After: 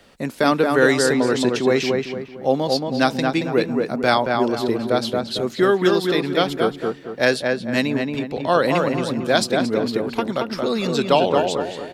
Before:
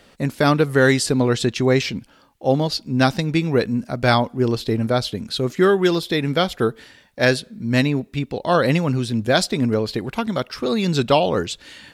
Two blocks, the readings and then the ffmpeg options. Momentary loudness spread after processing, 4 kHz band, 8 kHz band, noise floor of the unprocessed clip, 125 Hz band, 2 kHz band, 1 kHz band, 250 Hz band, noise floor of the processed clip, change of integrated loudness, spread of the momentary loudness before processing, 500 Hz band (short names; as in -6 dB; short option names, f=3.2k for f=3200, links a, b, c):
7 LU, -0.5 dB, -1.0 dB, -53 dBFS, -7.5 dB, +0.5 dB, +1.5 dB, -0.5 dB, -38 dBFS, 0.0 dB, 8 LU, +1.5 dB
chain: -filter_complex "[0:a]acrossover=split=190|1000|2800[a][b][c][d];[a]acompressor=threshold=-40dB:ratio=6[e];[b]crystalizer=i=6.5:c=0[f];[e][f][c][d]amix=inputs=4:normalize=0,asplit=2[g][h];[h]adelay=226,lowpass=f=1.9k:p=1,volume=-3dB,asplit=2[i][j];[j]adelay=226,lowpass=f=1.9k:p=1,volume=0.4,asplit=2[k][l];[l]adelay=226,lowpass=f=1.9k:p=1,volume=0.4,asplit=2[m][n];[n]adelay=226,lowpass=f=1.9k:p=1,volume=0.4,asplit=2[o][p];[p]adelay=226,lowpass=f=1.9k:p=1,volume=0.4[q];[g][i][k][m][o][q]amix=inputs=6:normalize=0,volume=-1dB"